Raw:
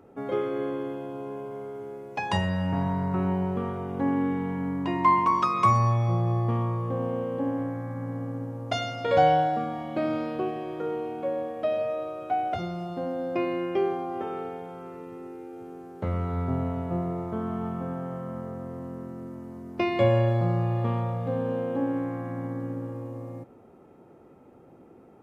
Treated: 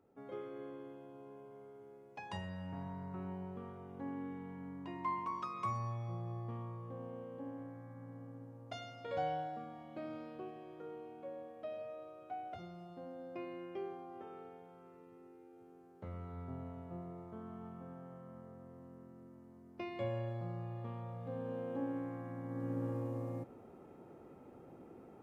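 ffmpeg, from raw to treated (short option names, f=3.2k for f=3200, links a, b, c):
-af "volume=-3dB,afade=t=in:st=20.97:d=0.77:silence=0.501187,afade=t=in:st=22.45:d=0.44:silence=0.375837"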